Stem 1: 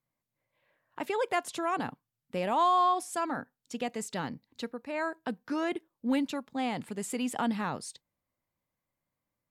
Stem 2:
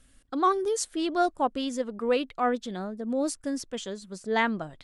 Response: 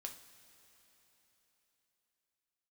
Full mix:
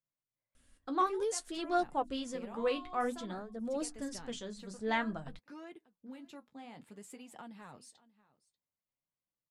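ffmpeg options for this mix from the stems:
-filter_complex "[0:a]acompressor=threshold=-32dB:ratio=6,volume=-10dB,asplit=2[a][b];[b]volume=-21dB[c];[1:a]bandreject=f=50:t=h:w=6,bandreject=f=100:t=h:w=6,bandreject=f=150:t=h:w=6,bandreject=f=200:t=h:w=6,bandreject=f=250:t=h:w=6,bandreject=f=300:t=h:w=6,asubboost=boost=3.5:cutoff=160,adelay=550,volume=-3dB[d];[c]aecho=0:1:588:1[e];[a][d][e]amix=inputs=3:normalize=0,flanger=delay=5.6:depth=9:regen=-43:speed=0.54:shape=sinusoidal"

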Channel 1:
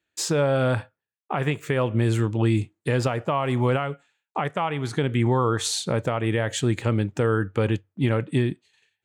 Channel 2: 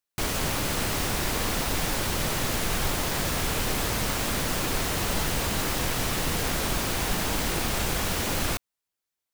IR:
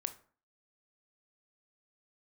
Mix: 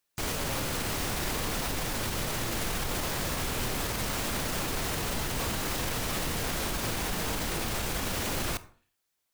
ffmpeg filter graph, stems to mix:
-filter_complex "[0:a]volume=-15dB[a];[1:a]alimiter=limit=-19.5dB:level=0:latency=1:release=476,volume=2.5dB,asplit=2[b][c];[c]volume=-3.5dB[d];[2:a]atrim=start_sample=2205[e];[d][e]afir=irnorm=-1:irlink=0[f];[a][b][f]amix=inputs=3:normalize=0,alimiter=limit=-22dB:level=0:latency=1:release=88"

